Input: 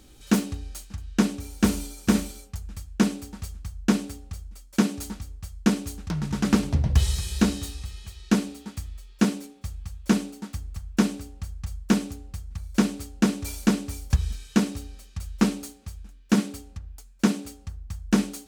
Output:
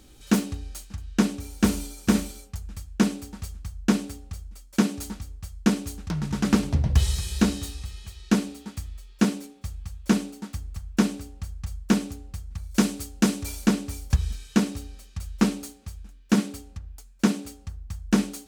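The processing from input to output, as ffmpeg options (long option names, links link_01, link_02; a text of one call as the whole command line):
ffmpeg -i in.wav -filter_complex "[0:a]asettb=1/sr,asplit=3[link_01][link_02][link_03];[link_01]atrim=end=12.714[link_04];[link_02]atrim=start=12.71:end=13.43,asetpts=PTS-STARTPTS,afade=type=in:duration=0.004:curve=qsin,afade=type=out:start_time=0.716:duration=0.004:curve=qsin,highshelf=frequency=4400:gain=6.5[link_05];[link_03]atrim=start=13.426[link_06];[link_04][link_05]acrossfade=duration=0.004:curve1=hsin:curve2=qsin[link_07];[link_07][link_06]acrossfade=duration=0.004:curve1=qsin:curve2=hsin" out.wav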